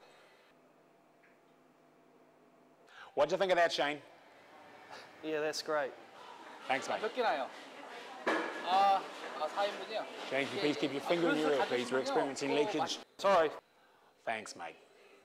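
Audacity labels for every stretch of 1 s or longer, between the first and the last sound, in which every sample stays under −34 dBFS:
3.950000	5.250000	silence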